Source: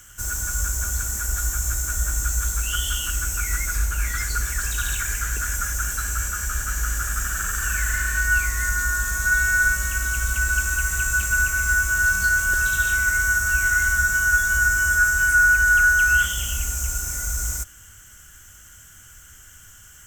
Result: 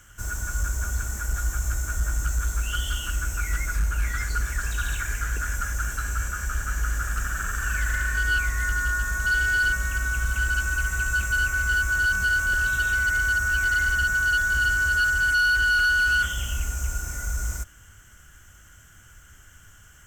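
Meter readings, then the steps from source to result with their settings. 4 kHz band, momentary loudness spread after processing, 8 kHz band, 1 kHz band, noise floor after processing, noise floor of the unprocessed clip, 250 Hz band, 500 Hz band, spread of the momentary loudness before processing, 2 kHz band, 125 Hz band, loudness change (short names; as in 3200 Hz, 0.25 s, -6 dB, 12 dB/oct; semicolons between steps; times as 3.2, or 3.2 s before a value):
0.0 dB, 9 LU, -9.5 dB, -2.5 dB, -51 dBFS, -47 dBFS, 0.0 dB, n/a, 9 LU, -3.0 dB, -0.5 dB, -3.5 dB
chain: high shelf 3700 Hz -11 dB; overloaded stage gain 18.5 dB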